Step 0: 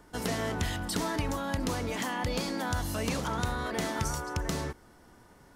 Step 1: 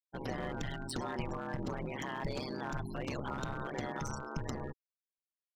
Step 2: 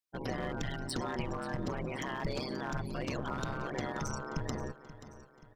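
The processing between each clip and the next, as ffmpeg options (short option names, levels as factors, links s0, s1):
-af "afftfilt=real='re*gte(hypot(re,im),0.0251)':imag='im*gte(hypot(re,im),0.0251)':win_size=1024:overlap=0.75,aeval=exprs='val(0)*sin(2*PI*67*n/s)':c=same,aeval=exprs='clip(val(0),-1,0.0282)':c=same,volume=0.75"
-af "equalizer=f=5200:w=4.1:g=3,bandreject=f=860:w=12,aecho=1:1:531|1062|1593|2124:0.178|0.0818|0.0376|0.0173,volume=1.26"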